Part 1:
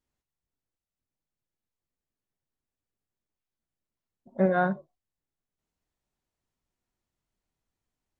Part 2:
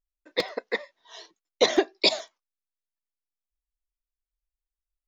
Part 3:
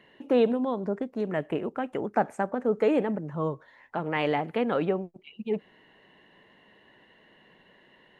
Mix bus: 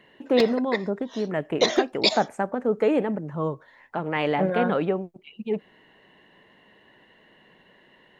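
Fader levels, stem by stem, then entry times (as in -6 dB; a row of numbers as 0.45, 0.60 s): -1.5, 0.0, +2.0 dB; 0.00, 0.00, 0.00 s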